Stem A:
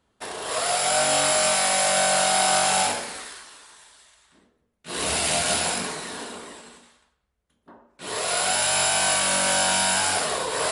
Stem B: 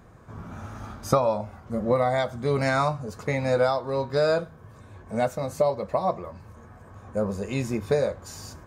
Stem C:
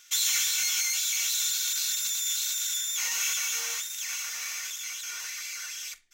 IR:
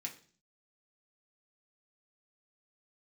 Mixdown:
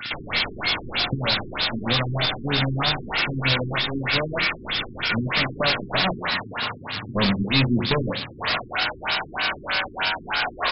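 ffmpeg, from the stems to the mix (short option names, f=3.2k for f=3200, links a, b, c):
-filter_complex "[0:a]highpass=910,alimiter=limit=-18.5dB:level=0:latency=1,adelay=300,volume=-11dB,asplit=2[a][b];[b]volume=-4dB[c];[1:a]lowshelf=f=100:g=-10,acrusher=bits=5:dc=4:mix=0:aa=0.000001,equalizer=f=125:t=o:w=1:g=11,equalizer=f=250:t=o:w=1:g=3,equalizer=f=500:t=o:w=1:g=-10,equalizer=f=1k:t=o:w=1:g=-5,equalizer=f=4k:t=o:w=1:g=10,equalizer=f=8k:t=o:w=1:g=10,volume=-5.5dB,asplit=2[d][e];[e]volume=-5dB[f];[2:a]bandreject=f=285.4:t=h:w=4,bandreject=f=570.8:t=h:w=4,bandreject=f=856.2:t=h:w=4,bandreject=f=1.1416k:t=h:w=4,bandreject=f=1.427k:t=h:w=4,bandreject=f=1.7124k:t=h:w=4,bandreject=f=1.9978k:t=h:w=4,bandreject=f=2.2832k:t=h:w=4,bandreject=f=2.5686k:t=h:w=4,bandreject=f=2.854k:t=h:w=4,bandreject=f=3.1394k:t=h:w=4,bandreject=f=3.4248k:t=h:w=4,bandreject=f=3.7102k:t=h:w=4,bandreject=f=3.9956k:t=h:w=4,bandreject=f=4.281k:t=h:w=4,bandreject=f=4.5664k:t=h:w=4,bandreject=f=4.8518k:t=h:w=4,bandreject=f=5.1372k:t=h:w=4,bandreject=f=5.4226k:t=h:w=4,bandreject=f=5.708k:t=h:w=4,bandreject=f=5.9934k:t=h:w=4,bandreject=f=6.2788k:t=h:w=4,bandreject=f=6.5642k:t=h:w=4,bandreject=f=6.8496k:t=h:w=4,bandreject=f=7.135k:t=h:w=4,bandreject=f=7.4204k:t=h:w=4,bandreject=f=7.7058k:t=h:w=4,bandreject=f=7.9912k:t=h:w=4,bandreject=f=8.2766k:t=h:w=4,volume=3dB[g];[3:a]atrim=start_sample=2205[h];[c][f]amix=inputs=2:normalize=0[i];[i][h]afir=irnorm=-1:irlink=0[j];[a][d][g][j]amix=inputs=4:normalize=0,lowshelf=f=180:g=8,asplit=2[k][l];[l]highpass=f=720:p=1,volume=33dB,asoftclip=type=tanh:threshold=-9.5dB[m];[k][m]amix=inputs=2:normalize=0,lowpass=f=5.7k:p=1,volume=-6dB,afftfilt=real='re*lt(b*sr/1024,390*pow(5500/390,0.5+0.5*sin(2*PI*3.2*pts/sr)))':imag='im*lt(b*sr/1024,390*pow(5500/390,0.5+0.5*sin(2*PI*3.2*pts/sr)))':win_size=1024:overlap=0.75"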